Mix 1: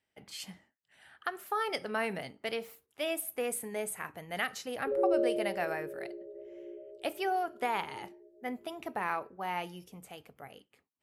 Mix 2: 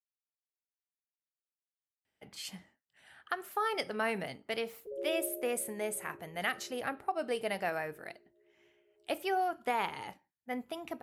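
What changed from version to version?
speech: entry +2.05 s; background -10.0 dB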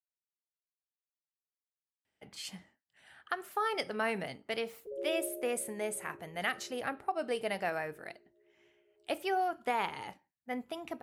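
master: add bell 12000 Hz -5.5 dB 0.22 oct

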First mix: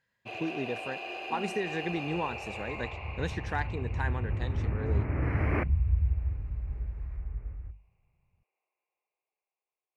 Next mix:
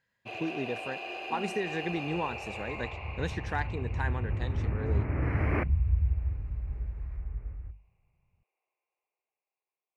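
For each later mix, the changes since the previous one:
none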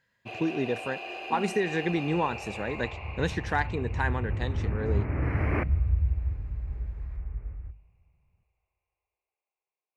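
speech +5.5 dB; reverb: on, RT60 1.5 s

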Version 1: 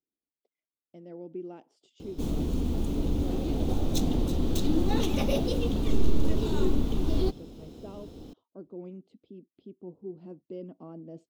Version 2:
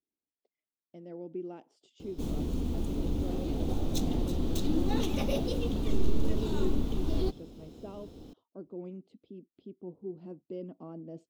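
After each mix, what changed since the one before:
background -3.5 dB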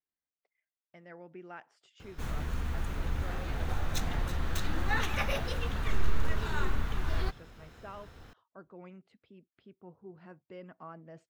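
master: remove EQ curve 120 Hz 0 dB, 290 Hz +14 dB, 870 Hz -4 dB, 1700 Hz -19 dB, 3300 Hz 0 dB

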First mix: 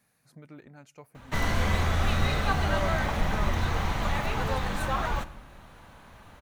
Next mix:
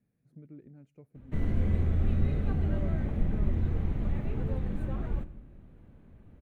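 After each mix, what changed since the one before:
master: add EQ curve 260 Hz 0 dB, 390 Hz -2 dB, 950 Hz -22 dB, 2300 Hz -18 dB, 5300 Hz -30 dB, 8500 Hz -25 dB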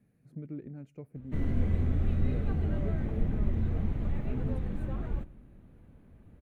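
speech +8.5 dB; background: send -7.5 dB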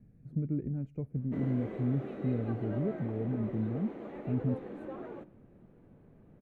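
background: add HPF 340 Hz 24 dB/oct; master: add tilt -3.5 dB/oct

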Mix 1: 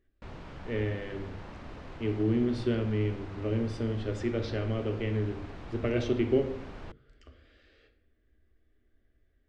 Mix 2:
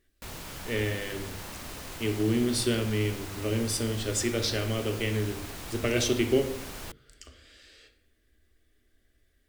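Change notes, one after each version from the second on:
master: remove tape spacing loss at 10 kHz 36 dB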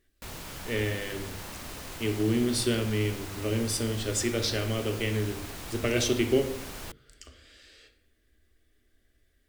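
none

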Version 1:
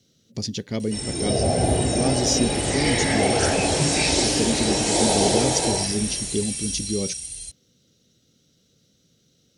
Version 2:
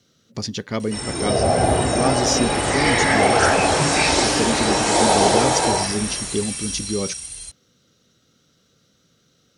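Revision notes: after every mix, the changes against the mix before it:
master: add bell 1200 Hz +13.5 dB 1.4 oct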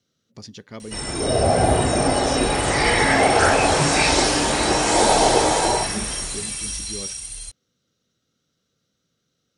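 speech -12.0 dB; background: remove HPF 55 Hz

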